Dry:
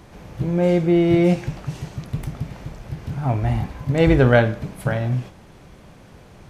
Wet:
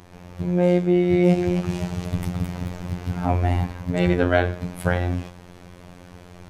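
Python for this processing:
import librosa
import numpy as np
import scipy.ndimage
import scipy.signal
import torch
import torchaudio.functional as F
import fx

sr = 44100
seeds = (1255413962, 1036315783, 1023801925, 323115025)

y = fx.rider(x, sr, range_db=3, speed_s=0.5)
y = fx.echo_pitch(y, sr, ms=282, semitones=1, count=3, db_per_echo=-6.0, at=(1.05, 3.26))
y = fx.robotise(y, sr, hz=88.8)
y = F.gain(torch.from_numpy(y), 1.5).numpy()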